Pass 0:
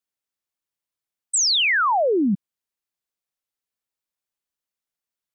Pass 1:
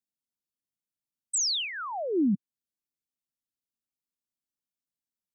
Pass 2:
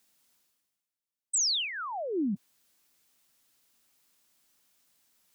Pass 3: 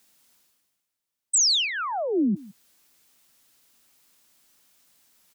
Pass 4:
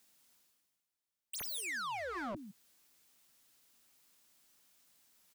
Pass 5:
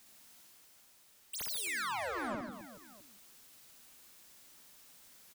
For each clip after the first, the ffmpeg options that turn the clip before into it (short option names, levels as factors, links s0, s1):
-af "equalizer=f=125:t=o:w=1:g=4,equalizer=f=250:t=o:w=1:g=9,equalizer=f=500:t=o:w=1:g=-6,equalizer=f=1000:t=o:w=1:g=-7,equalizer=f=2000:t=o:w=1:g=-11,alimiter=limit=0.211:level=0:latency=1:release=359,volume=0.473"
-af "lowshelf=f=410:g=-7.5,areverse,acompressor=mode=upward:threshold=0.00316:ratio=2.5,areverse"
-filter_complex "[0:a]asplit=2[s0][s1];[s1]adelay=163.3,volume=0.0891,highshelf=f=4000:g=-3.67[s2];[s0][s2]amix=inputs=2:normalize=0,volume=2.24"
-af "aeval=exprs='0.0355*(abs(mod(val(0)/0.0355+3,4)-2)-1)':c=same,volume=0.473"
-af "aeval=exprs='val(0)+0.5*0.00119*sgn(val(0))':c=same,aecho=1:1:60|144|261.6|426.2|656.7:0.631|0.398|0.251|0.158|0.1"